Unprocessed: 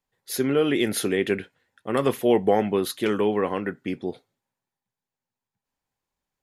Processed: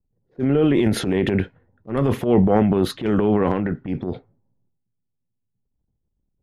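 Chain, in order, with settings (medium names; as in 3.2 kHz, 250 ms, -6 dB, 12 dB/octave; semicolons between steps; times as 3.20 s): RIAA curve playback; level-controlled noise filter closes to 390 Hz, open at -17 dBFS; transient shaper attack -10 dB, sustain +9 dB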